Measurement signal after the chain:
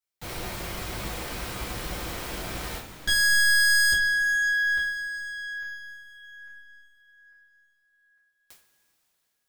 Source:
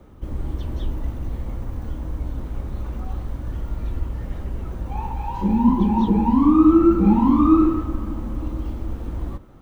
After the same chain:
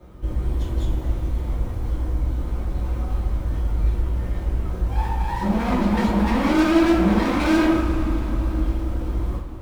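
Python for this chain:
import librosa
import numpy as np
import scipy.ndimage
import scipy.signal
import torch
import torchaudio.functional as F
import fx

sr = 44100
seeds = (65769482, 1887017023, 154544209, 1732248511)

y = fx.tracing_dist(x, sr, depth_ms=0.43)
y = np.clip(y, -10.0 ** (-19.5 / 20.0), 10.0 ** (-19.5 / 20.0))
y = fx.rev_double_slope(y, sr, seeds[0], early_s=0.34, late_s=4.2, knee_db=-18, drr_db=-7.5)
y = F.gain(torch.from_numpy(y), -4.5).numpy()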